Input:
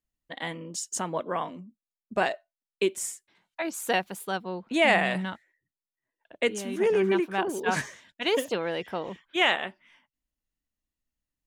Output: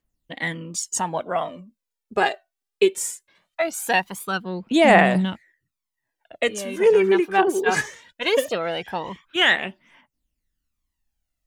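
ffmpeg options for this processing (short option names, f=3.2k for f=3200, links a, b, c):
-af "aphaser=in_gain=1:out_gain=1:delay=2.7:decay=0.59:speed=0.2:type=triangular,volume=4dB"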